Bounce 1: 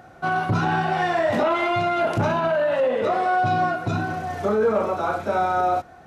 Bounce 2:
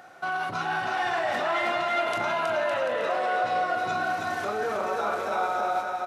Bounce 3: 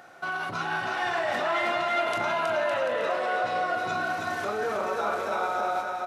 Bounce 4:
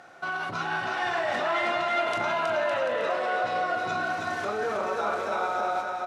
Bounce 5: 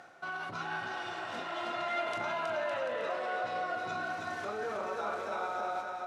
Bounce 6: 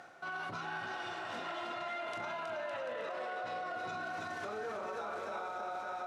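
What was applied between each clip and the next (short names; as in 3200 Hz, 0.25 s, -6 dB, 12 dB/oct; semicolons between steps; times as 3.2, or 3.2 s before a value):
limiter -19.5 dBFS, peak gain reduction 7.5 dB; HPF 1000 Hz 6 dB/oct; on a send: bouncing-ball echo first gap 0.32 s, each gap 0.75×, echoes 5; on the sum: gain +2.5 dB
notch 750 Hz, Q 25
LPF 9000 Hz 12 dB/oct
spectral repair 0.84–1.78, 550–2800 Hz both; reverse; upward compressor, threshold -32 dBFS; reverse; gain -7.5 dB
limiter -32 dBFS, peak gain reduction 9.5 dB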